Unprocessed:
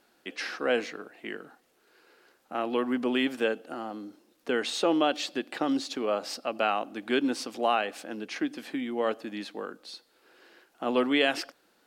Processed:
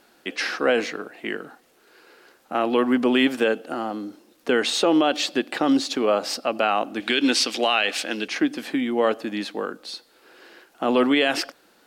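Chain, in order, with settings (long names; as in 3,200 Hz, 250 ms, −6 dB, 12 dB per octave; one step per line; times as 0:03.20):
0:07.00–0:08.28: meter weighting curve D
brickwall limiter −18 dBFS, peak gain reduction 10.5 dB
level +8.5 dB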